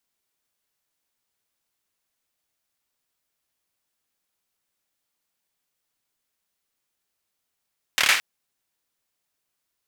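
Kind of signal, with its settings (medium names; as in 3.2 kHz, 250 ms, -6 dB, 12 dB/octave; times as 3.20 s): hand clap length 0.22 s, bursts 5, apart 27 ms, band 2.1 kHz, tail 0.44 s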